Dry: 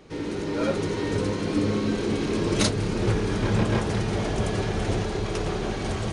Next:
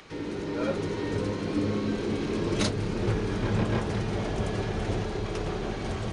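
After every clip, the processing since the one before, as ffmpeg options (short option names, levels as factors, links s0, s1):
-filter_complex "[0:a]highshelf=f=7500:g=-8.5,acrossover=split=440|850[s0][s1][s2];[s2]acompressor=mode=upward:threshold=0.01:ratio=2.5[s3];[s0][s1][s3]amix=inputs=3:normalize=0,volume=0.668"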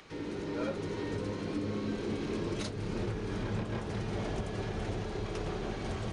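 -af "alimiter=limit=0.0944:level=0:latency=1:release=348,volume=0.596"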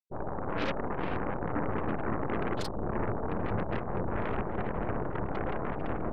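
-af "afftfilt=real='re*gte(hypot(re,im),0.0224)':imag='im*gte(hypot(re,im),0.0224)':win_size=1024:overlap=0.75,aeval=exprs='0.0596*(cos(1*acos(clip(val(0)/0.0596,-1,1)))-cos(1*PI/2))+0.0211*(cos(7*acos(clip(val(0)/0.0596,-1,1)))-cos(7*PI/2))+0.0188*(cos(8*acos(clip(val(0)/0.0596,-1,1)))-cos(8*PI/2))':c=same"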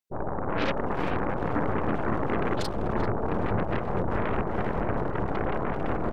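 -filter_complex "[0:a]asplit=2[s0][s1];[s1]adelay=390,highpass=300,lowpass=3400,asoftclip=type=hard:threshold=0.0266,volume=0.355[s2];[s0][s2]amix=inputs=2:normalize=0,volume=1.68"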